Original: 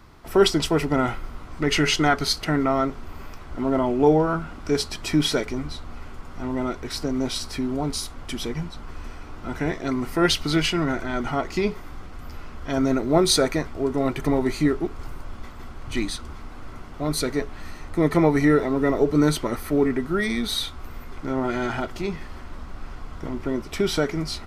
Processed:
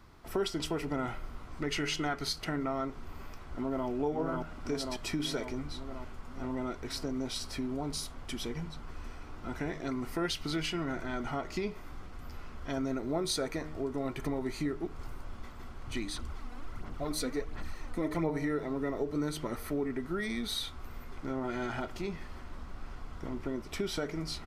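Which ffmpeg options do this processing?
-filter_complex "[0:a]asplit=2[a][b];[b]afade=t=in:st=3.16:d=0.01,afade=t=out:st=3.88:d=0.01,aecho=0:1:540|1080|1620|2160|2700|3240|3780|4320|4860:0.749894|0.449937|0.269962|0.161977|0.0971863|0.0583118|0.0349871|0.0209922|0.0125953[c];[a][c]amix=inputs=2:normalize=0,asettb=1/sr,asplit=3[d][e][f];[d]atrim=end=16.164[g];[e]atrim=start=16.16:end=18.3,asetpts=PTS-STARTPTS,afade=t=in:d=0.004:c=qsin,afade=t=out:st=2.136:d=0.004:c=qsin,aphaser=in_gain=1:out_gain=1:delay=4.1:decay=0.54:speed=1.4:type=sinusoidal[h];[f]atrim=start=18.296[i];[g][h]acrossfade=d=0.004:c1=hsin:c2=qsin[j];[j][i]acrossfade=d=0.004:c1=qsin:c2=hsin,bandreject=f=153.7:t=h:w=4,bandreject=f=307.4:t=h:w=4,bandreject=f=461.1:t=h:w=4,bandreject=f=614.8:t=h:w=4,bandreject=f=768.5:t=h:w=4,bandreject=f=922.2:t=h:w=4,bandreject=f=1.0759k:t=h:w=4,bandreject=f=1.2296k:t=h:w=4,bandreject=f=1.3833k:t=h:w=4,bandreject=f=1.537k:t=h:w=4,bandreject=f=1.6907k:t=h:w=4,bandreject=f=1.8444k:t=h:w=4,bandreject=f=1.9981k:t=h:w=4,bandreject=f=2.1518k:t=h:w=4,bandreject=f=2.3055k:t=h:w=4,bandreject=f=2.4592k:t=h:w=4,bandreject=f=2.6129k:t=h:w=4,bandreject=f=2.7666k:t=h:w=4,bandreject=f=2.9203k:t=h:w=4,bandreject=f=3.074k:t=h:w=4,bandreject=f=3.2277k:t=h:w=4,acompressor=threshold=-25dB:ratio=2.5,volume=-7dB"

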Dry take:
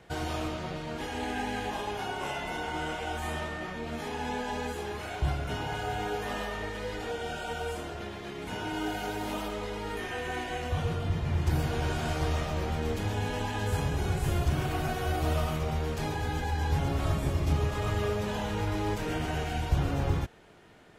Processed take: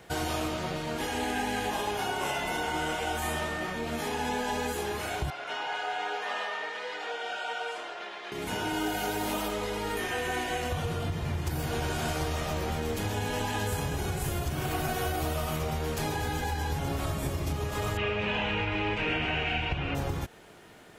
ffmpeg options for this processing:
-filter_complex "[0:a]asettb=1/sr,asplit=3[a][b][c];[a]atrim=end=5.304[d];[b]atrim=start=5.3:end=8.32,asetpts=PTS-STARTPTS,afade=t=in:d=0.004:c=qsin,afade=t=out:st=3.016:d=0.004:c=qsin,highpass=680,lowpass=3.9k[e];[c]atrim=start=8.316[f];[d][e]acrossfade=d=0.004:c1=hsin:c2=qsin[g];[g][f]acrossfade=d=0.004:c1=qsin:c2=hsin,asettb=1/sr,asplit=3[h][i][j];[h]atrim=end=17.974[k];[i]atrim=start=17.97:end=19.95,asetpts=PTS-STARTPTS,afade=t=in:d=0.004:c=qsin,afade=t=out:st=1.976:d=0.004:c=qsin,lowpass=f=2.6k:t=q:w=5[l];[j]atrim=start=19.946[m];[k][l]acrossfade=d=0.004:c1=hsin:c2=qsin[n];[n][m]acrossfade=d=0.004:c1=qsin:c2=hsin,highshelf=f=8.6k:g=11,acompressor=threshold=-29dB:ratio=6,lowshelf=f=130:g=-5,volume=4dB"

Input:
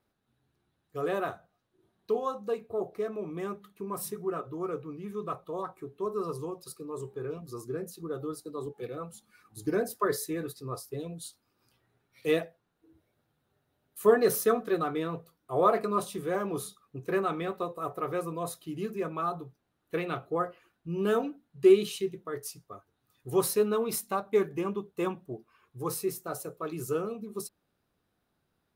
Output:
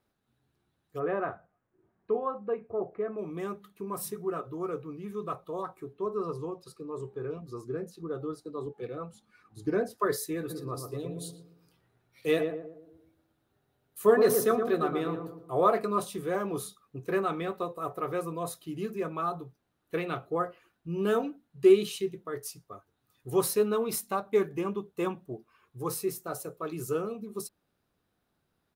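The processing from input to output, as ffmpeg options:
-filter_complex "[0:a]asplit=3[a][b][c];[a]afade=t=out:st=0.98:d=0.02[d];[b]lowpass=f=2.2k:w=0.5412,lowpass=f=2.2k:w=1.3066,afade=t=in:st=0.98:d=0.02,afade=t=out:st=3.17:d=0.02[e];[c]afade=t=in:st=3.17:d=0.02[f];[d][e][f]amix=inputs=3:normalize=0,asettb=1/sr,asplit=3[g][h][i];[g]atrim=end=5.934[j];[h]atrim=start=5.93:end=9.98,asetpts=PTS-STARTPTS,afade=t=in:d=0.004:c=qsin,afade=t=out:st=4.046:d=0.004:c=qsin,aemphasis=mode=reproduction:type=50fm[k];[i]atrim=start=9.976[l];[j][k]acrossfade=d=0.004:c1=hsin:c2=qsin[m];[m][l]acrossfade=d=0.004:c1=qsin:c2=hsin,asplit=3[n][o][p];[n]afade=t=out:st=10.49:d=0.02[q];[o]asplit=2[r][s];[s]adelay=117,lowpass=f=1k:p=1,volume=-4.5dB,asplit=2[t][u];[u]adelay=117,lowpass=f=1k:p=1,volume=0.46,asplit=2[v][w];[w]adelay=117,lowpass=f=1k:p=1,volume=0.46,asplit=2[x][y];[y]adelay=117,lowpass=f=1k:p=1,volume=0.46,asplit=2[z][aa];[aa]adelay=117,lowpass=f=1k:p=1,volume=0.46,asplit=2[ab][ac];[ac]adelay=117,lowpass=f=1k:p=1,volume=0.46[ad];[r][t][v][x][z][ab][ad]amix=inputs=7:normalize=0,afade=t=in:st=10.49:d=0.02,afade=t=out:st=15.56:d=0.02[ae];[p]afade=t=in:st=15.56:d=0.02[af];[q][ae][af]amix=inputs=3:normalize=0"

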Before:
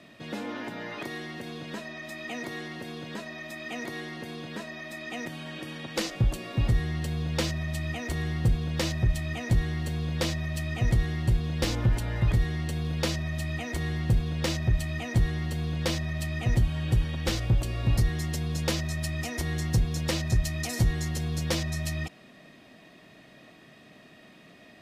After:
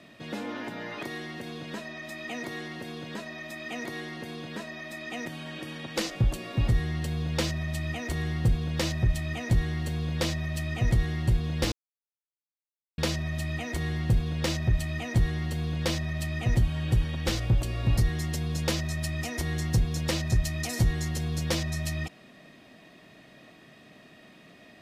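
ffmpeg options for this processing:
-filter_complex "[0:a]asplit=3[a][b][c];[a]atrim=end=11.72,asetpts=PTS-STARTPTS,afade=t=out:st=11.716:d=0.004:c=hsin[d];[b]atrim=start=11.72:end=12.98,asetpts=PTS-STARTPTS,volume=0[e];[c]atrim=start=12.98,asetpts=PTS-STARTPTS,afade=t=in:d=0.004:c=hsin[f];[d][e][f]concat=n=3:v=0:a=1"

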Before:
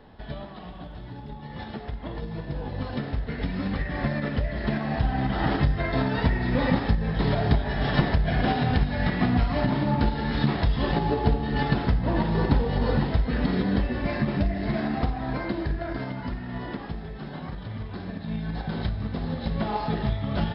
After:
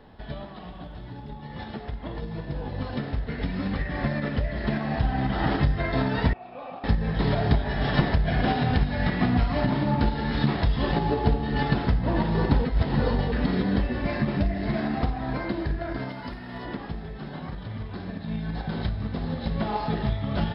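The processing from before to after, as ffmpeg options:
-filter_complex "[0:a]asettb=1/sr,asplit=3[a][b][c];[a]atrim=end=6.334[d];[b]atrim=start=6.33:end=6.84,asetpts=PTS-STARTPTS,afade=t=in:d=0.004:c=qsin,afade=t=out:st=0.506:d=0.004:c=qsin,asplit=3[e][f][g];[e]bandpass=f=730:t=q:w=8,volume=0dB[h];[f]bandpass=f=1.09k:t=q:w=8,volume=-6dB[i];[g]bandpass=f=2.44k:t=q:w=8,volume=-9dB[j];[h][i][j]amix=inputs=3:normalize=0[k];[c]atrim=start=6.836[l];[d][k]acrossfade=d=0.004:c1=hsin:c2=qsin[m];[m][l]acrossfade=d=0.004:c1=qsin:c2=hsin,asettb=1/sr,asplit=3[n][o][p];[n]atrim=end=16.094[q];[o]atrim=start=16.09:end=16.65,asetpts=PTS-STARTPTS,afade=t=in:d=0.004:c=qsin,afade=t=out:st=0.556:d=0.004:c=qsin,bass=f=250:g=-7,treble=f=4k:g=7[r];[p]atrim=start=16.646[s];[q][r]acrossfade=d=0.004:c1=hsin:c2=qsin[t];[t][s]acrossfade=d=0.004:c1=qsin:c2=hsin,asplit=3[u][v][w];[u]atrim=end=12.652[x];[v]atrim=start=12.648:end=13.322,asetpts=PTS-STARTPTS,areverse[y];[w]atrim=start=13.318[z];[x][y]acrossfade=d=0.004:c1=hsin:c2=hsin[aa];[aa][z]acrossfade=d=0.004:c1=hsin:c2=hsin"

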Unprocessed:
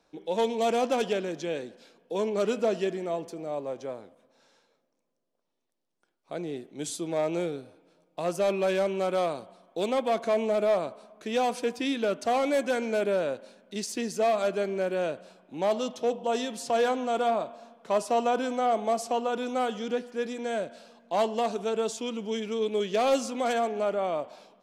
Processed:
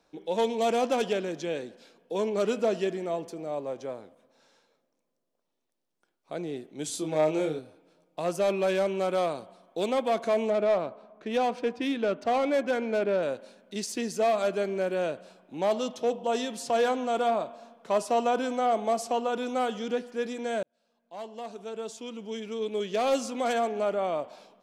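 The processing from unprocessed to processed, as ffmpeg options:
-filter_complex "[0:a]asettb=1/sr,asplit=3[a][b][c];[a]atrim=end=6.904[d];[b]atrim=start=6.9:end=7.59,asetpts=PTS-STARTPTS,afade=t=in:d=0.004:c=qsin,afade=t=out:st=0.686:d=0.004:c=qsin,asplit=2[e][f];[f]adelay=26,volume=-4dB[g];[e][g]amix=inputs=2:normalize=0,atrim=end_sample=30429[h];[c]atrim=start=7.586[i];[d][h]acrossfade=d=0.004:c1=hsin:c2=qsin[j];[j][i]acrossfade=d=0.004:c1=qsin:c2=hsin,asettb=1/sr,asplit=3[k][l][m];[k]atrim=end=10.504[n];[l]atrim=start=10.5:end=13.23,asetpts=PTS-STARTPTS,afade=t=in:d=0.004:c=qsin,afade=t=out:st=2.726:d=0.004:c=qsin,adynamicsmooth=sensitivity=3:basefreq=2.8k[o];[m]atrim=start=13.226[p];[n][o]acrossfade=d=0.004:c1=hsin:c2=qsin[q];[q][p]acrossfade=d=0.004:c1=qsin:c2=hsin,asplit=2[r][s];[r]atrim=end=20.63,asetpts=PTS-STARTPTS,afade=t=out:st=20.626:d=0.004:c=hsin[t];[s]atrim=start=20.63,asetpts=PTS-STARTPTS,afade=t=in:d=2.94[u];[t][u]concat=n=2:v=0:a=1"

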